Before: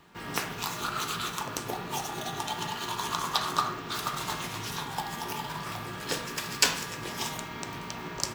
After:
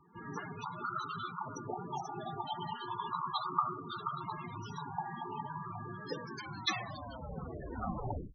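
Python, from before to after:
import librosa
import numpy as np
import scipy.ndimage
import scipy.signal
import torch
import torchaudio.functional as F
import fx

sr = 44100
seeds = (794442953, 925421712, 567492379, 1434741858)

y = fx.tape_stop_end(x, sr, length_s=2.14)
y = fx.cheby_harmonics(y, sr, harmonics=(2, 4), levels_db=(-22, -24), full_scale_db=-4.5)
y = fx.spec_topn(y, sr, count=16)
y = F.gain(torch.from_numpy(y), -3.0).numpy()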